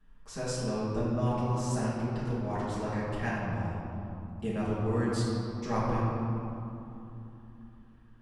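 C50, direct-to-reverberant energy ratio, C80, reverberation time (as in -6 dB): -3.0 dB, -11.0 dB, -0.5 dB, 3.0 s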